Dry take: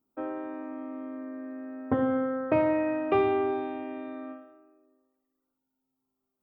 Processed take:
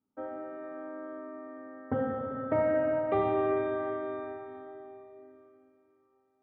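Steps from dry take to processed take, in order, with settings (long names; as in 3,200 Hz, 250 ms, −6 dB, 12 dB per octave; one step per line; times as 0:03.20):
low-pass filter 3,300 Hz 12 dB per octave
notch filter 2,500 Hz, Q 8.2
notch comb filter 350 Hz
echo through a band-pass that steps 131 ms, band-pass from 170 Hz, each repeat 0.7 octaves, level −10 dB
dense smooth reverb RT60 3.6 s, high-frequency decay 0.85×, DRR 0 dB
level −4 dB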